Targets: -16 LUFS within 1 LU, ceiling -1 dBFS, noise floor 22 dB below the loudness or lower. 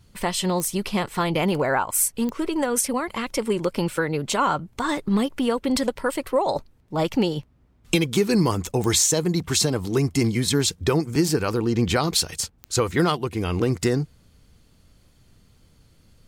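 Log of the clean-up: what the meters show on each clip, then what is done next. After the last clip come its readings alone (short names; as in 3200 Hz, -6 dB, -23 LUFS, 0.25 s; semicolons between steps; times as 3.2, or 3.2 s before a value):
clicks 4; loudness -23.0 LUFS; peak -6.0 dBFS; loudness target -16.0 LUFS
-> de-click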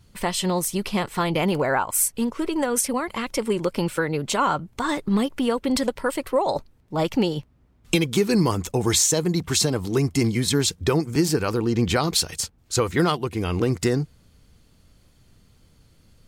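clicks 0; loudness -23.0 LUFS; peak -6.0 dBFS; loudness target -16.0 LUFS
-> gain +7 dB; limiter -1 dBFS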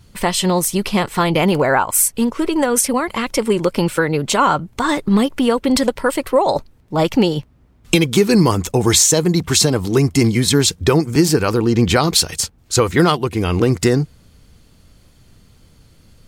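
loudness -16.0 LUFS; peak -1.0 dBFS; noise floor -51 dBFS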